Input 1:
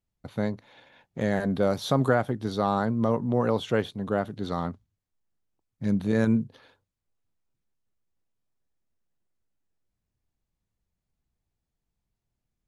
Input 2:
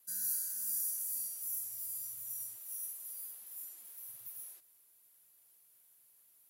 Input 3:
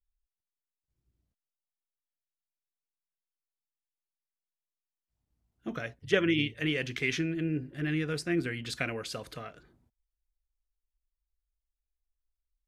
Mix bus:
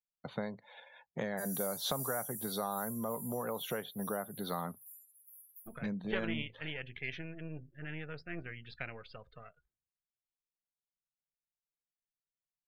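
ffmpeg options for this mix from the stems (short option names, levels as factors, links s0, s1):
-filter_complex "[0:a]highpass=f=150:w=0.5412,highpass=f=150:w=1.3066,acompressor=threshold=0.0251:ratio=16,volume=1.33[s0];[1:a]adelay=1300,volume=0.531[s1];[2:a]aeval=exprs='if(lt(val(0),0),0.447*val(0),val(0))':c=same,lowpass=3500,volume=0.473,asplit=2[s2][s3];[s3]apad=whole_len=343654[s4];[s1][s4]sidechaincompress=threshold=0.00501:ratio=8:attack=8.6:release=579[s5];[s0][s5][s2]amix=inputs=3:normalize=0,equalizer=f=290:w=1.3:g=-9.5,afftdn=nr=23:nf=-54"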